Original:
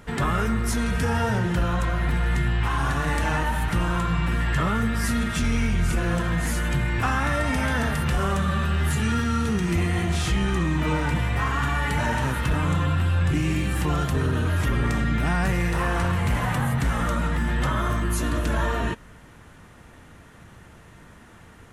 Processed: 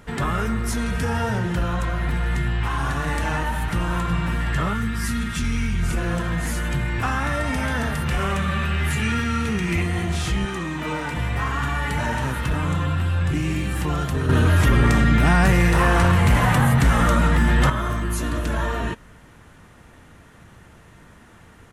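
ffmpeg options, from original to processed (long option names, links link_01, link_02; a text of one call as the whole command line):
ffmpeg -i in.wav -filter_complex "[0:a]asplit=2[link_01][link_02];[link_02]afade=type=in:start_time=3.51:duration=0.01,afade=type=out:start_time=3.94:duration=0.01,aecho=0:1:370|740|1110|1480|1850|2220|2590:0.334965|0.200979|0.120588|0.0723525|0.0434115|0.0260469|0.0156281[link_03];[link_01][link_03]amix=inputs=2:normalize=0,asettb=1/sr,asplit=3[link_04][link_05][link_06];[link_04]atrim=end=4.734[link_07];[link_05]atrim=start=4.73:end=5.83,asetpts=PTS-STARTPTS,afade=type=in:duration=0.004:curve=qsin,afade=type=out:start_time=1.096:duration=0.004:curve=qsin,equalizer=frequency=590:width=1.5:gain=-12[link_08];[link_06]atrim=start=5.826[link_09];[link_07][link_08]acrossfade=duration=0.004:curve1=hsin:curve2=qsin[link_10];[link_10][link_09]acrossfade=duration=0.004:curve1=qsin:curve2=hsin,asettb=1/sr,asplit=3[link_11][link_12][link_13];[link_11]atrim=end=8.114[link_14];[link_12]atrim=start=8.11:end=9.82,asetpts=PTS-STARTPTS,afade=type=in:duration=0.004:curve=qsin,afade=type=out:start_time=1.706:duration=0.004:curve=qsin,equalizer=frequency=2300:width_type=o:width=0.63:gain=9[link_15];[link_13]atrim=start=9.816[link_16];[link_14][link_15]acrossfade=duration=0.004:curve1=hsin:curve2=qsin[link_17];[link_17][link_16]acrossfade=duration=0.004:curve1=qsin:curve2=hsin,asettb=1/sr,asplit=3[link_18][link_19][link_20];[link_18]atrim=end=10.454[link_21];[link_19]atrim=start=10.45:end=11.17,asetpts=PTS-STARTPTS,afade=type=in:duration=0.004:curve=qsin,afade=type=out:start_time=0.716:duration=0.004:curve=qsin,highpass=frequency=270:poles=1[link_22];[link_20]atrim=start=11.166[link_23];[link_21][link_22]acrossfade=duration=0.004:curve1=hsin:curve2=qsin[link_24];[link_24][link_23]acrossfade=duration=0.004:curve1=qsin:curve2=hsin,asettb=1/sr,asplit=3[link_25][link_26][link_27];[link_25]atrim=end=14.294[link_28];[link_26]atrim=start=14.29:end=17.7,asetpts=PTS-STARTPTS,afade=type=in:duration=0.004:curve=qsin,afade=type=out:start_time=3.406:duration=0.004:curve=qsin,acontrast=84[link_29];[link_27]atrim=start=17.696[link_30];[link_28][link_29]acrossfade=duration=0.004:curve1=hsin:curve2=qsin[link_31];[link_31][link_30]acrossfade=duration=0.004:curve1=qsin:curve2=hsin" out.wav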